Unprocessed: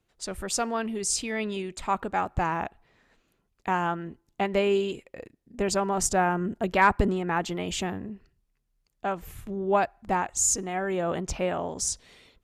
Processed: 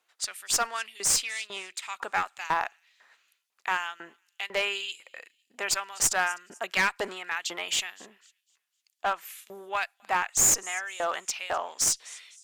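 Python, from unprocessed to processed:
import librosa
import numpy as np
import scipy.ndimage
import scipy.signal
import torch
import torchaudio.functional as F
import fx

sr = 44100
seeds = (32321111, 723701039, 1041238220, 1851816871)

p1 = fx.tube_stage(x, sr, drive_db=26.0, bias=0.45, at=(1.19, 1.84))
p2 = p1 + fx.echo_wet_highpass(p1, sr, ms=252, feedback_pct=34, hz=4200.0, wet_db=-21, dry=0)
p3 = fx.filter_lfo_highpass(p2, sr, shape='saw_up', hz=2.0, low_hz=790.0, high_hz=3800.0, q=1.0)
p4 = fx.clip_asym(p3, sr, top_db=-28.0, bottom_db=-18.0)
y = F.gain(torch.from_numpy(p4), 5.5).numpy()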